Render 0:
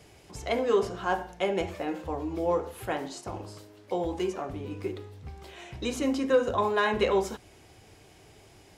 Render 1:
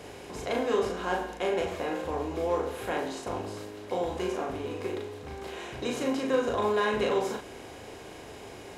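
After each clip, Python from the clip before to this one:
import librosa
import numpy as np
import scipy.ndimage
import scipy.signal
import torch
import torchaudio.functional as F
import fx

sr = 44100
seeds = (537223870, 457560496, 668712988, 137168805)

y = fx.bin_compress(x, sr, power=0.6)
y = fx.doubler(y, sr, ms=38.0, db=-3.0)
y = y * librosa.db_to_amplitude(-6.5)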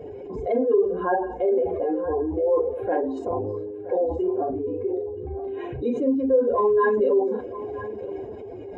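y = fx.spec_expand(x, sr, power=2.6)
y = y + 10.0 ** (-15.0 / 20.0) * np.pad(y, (int(972 * sr / 1000.0), 0))[:len(y)]
y = y * librosa.db_to_amplitude(7.5)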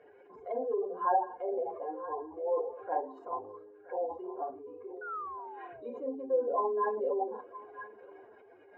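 y = fx.spec_paint(x, sr, seeds[0], shape='fall', start_s=5.01, length_s=1.82, low_hz=210.0, high_hz=1500.0, level_db=-37.0)
y = fx.auto_wah(y, sr, base_hz=760.0, top_hz=1700.0, q=3.4, full_db=-17.5, direction='down')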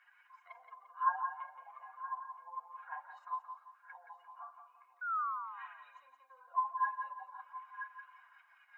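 y = scipy.signal.sosfilt(scipy.signal.ellip(4, 1.0, 60, 1100.0, 'highpass', fs=sr, output='sos'), x)
y = fx.echo_feedback(y, sr, ms=173, feedback_pct=35, wet_db=-8)
y = y * librosa.db_to_amplitude(4.0)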